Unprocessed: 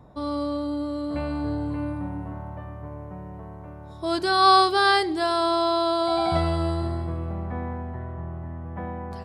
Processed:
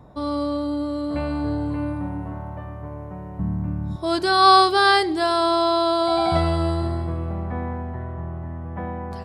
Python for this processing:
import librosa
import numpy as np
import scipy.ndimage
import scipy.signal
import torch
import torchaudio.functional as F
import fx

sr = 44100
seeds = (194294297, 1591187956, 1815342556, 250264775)

y = fx.low_shelf_res(x, sr, hz=320.0, db=11.0, q=3.0, at=(3.39, 3.96))
y = y * librosa.db_to_amplitude(3.0)